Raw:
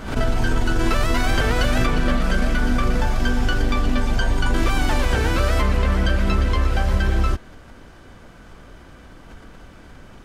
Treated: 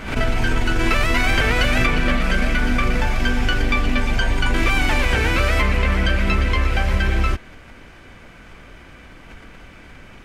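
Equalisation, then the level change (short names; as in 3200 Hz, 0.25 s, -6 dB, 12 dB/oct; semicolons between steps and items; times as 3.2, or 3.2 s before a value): bell 2300 Hz +10.5 dB 0.73 oct; 0.0 dB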